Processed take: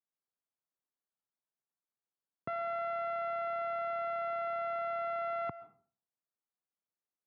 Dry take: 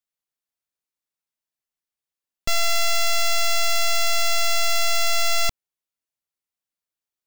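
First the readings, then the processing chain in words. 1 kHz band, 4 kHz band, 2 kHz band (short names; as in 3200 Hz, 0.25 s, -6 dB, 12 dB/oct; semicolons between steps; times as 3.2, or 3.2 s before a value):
-6.5 dB, under -35 dB, -19.5 dB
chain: HPF 120 Hz 24 dB/oct; digital reverb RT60 0.47 s, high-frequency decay 0.55×, pre-delay 90 ms, DRR 18.5 dB; limiter -14 dBFS, peak gain reduction 3 dB; LPF 1500 Hz 24 dB/oct; gain -3.5 dB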